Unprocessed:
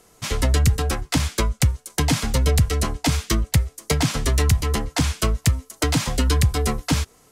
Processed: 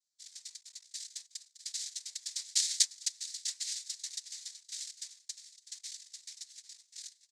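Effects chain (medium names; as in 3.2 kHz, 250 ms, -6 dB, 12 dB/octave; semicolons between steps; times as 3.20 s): Doppler pass-by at 2.73 s, 57 m/s, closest 12 m; hum 50 Hz, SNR 14 dB; in parallel at -4 dB: companded quantiser 2-bit; on the sum: Butterworth band-pass 6 kHz, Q 2.5; on a send: feedback delay 651 ms, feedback 18%, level -13 dB; on the sum: noise-vocoded speech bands 6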